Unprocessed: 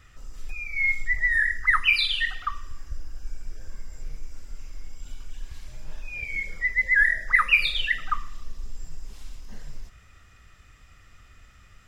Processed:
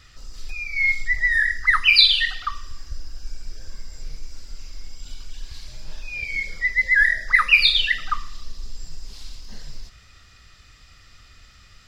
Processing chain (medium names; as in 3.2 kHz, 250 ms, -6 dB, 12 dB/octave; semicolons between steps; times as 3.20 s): peaking EQ 4.5 kHz +14 dB 0.81 oct; trim +1.5 dB